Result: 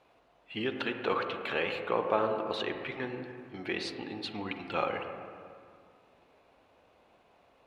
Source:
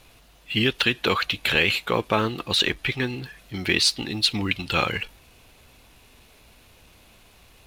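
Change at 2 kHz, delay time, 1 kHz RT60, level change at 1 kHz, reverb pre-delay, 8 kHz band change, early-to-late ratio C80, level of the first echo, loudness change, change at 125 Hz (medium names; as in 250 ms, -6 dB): -12.5 dB, no echo, 2.1 s, -5.0 dB, 37 ms, -24.5 dB, 6.5 dB, no echo, -11.0 dB, -16.0 dB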